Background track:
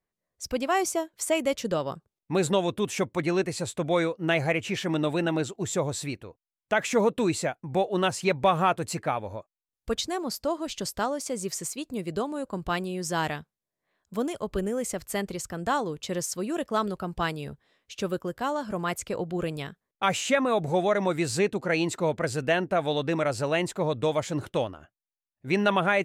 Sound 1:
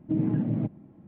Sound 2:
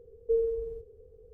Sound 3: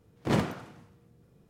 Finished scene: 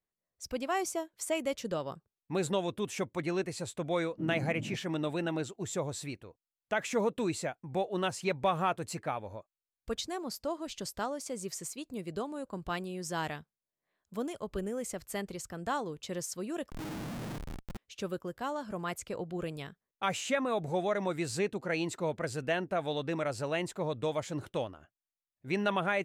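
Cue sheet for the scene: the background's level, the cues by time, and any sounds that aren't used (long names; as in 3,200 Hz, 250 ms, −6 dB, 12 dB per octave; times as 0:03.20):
background track −7 dB
0:04.09: mix in 1 −13.5 dB
0:16.70: overwrite with 1 −10.5 dB + comparator with hysteresis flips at −45.5 dBFS
not used: 2, 3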